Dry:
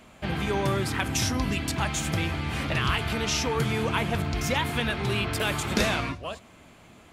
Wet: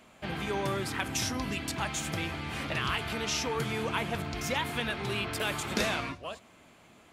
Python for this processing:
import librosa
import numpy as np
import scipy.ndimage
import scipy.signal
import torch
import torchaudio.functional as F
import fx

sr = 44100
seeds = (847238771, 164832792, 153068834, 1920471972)

y = fx.low_shelf(x, sr, hz=130.0, db=-9.0)
y = F.gain(torch.from_numpy(y), -4.0).numpy()